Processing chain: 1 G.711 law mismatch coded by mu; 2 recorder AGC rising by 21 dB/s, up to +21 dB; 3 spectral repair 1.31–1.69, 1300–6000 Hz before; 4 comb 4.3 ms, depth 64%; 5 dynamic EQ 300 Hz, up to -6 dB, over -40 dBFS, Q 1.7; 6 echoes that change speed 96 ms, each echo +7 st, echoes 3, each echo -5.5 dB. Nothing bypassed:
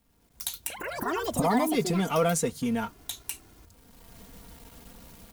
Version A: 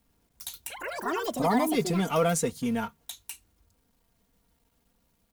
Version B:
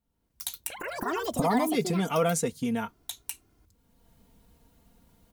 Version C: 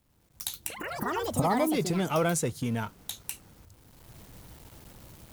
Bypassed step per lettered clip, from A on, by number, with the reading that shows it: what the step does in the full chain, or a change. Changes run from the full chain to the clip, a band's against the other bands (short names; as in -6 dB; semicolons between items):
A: 2, momentary loudness spread change +5 LU; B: 1, distortion -25 dB; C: 4, 125 Hz band +2.5 dB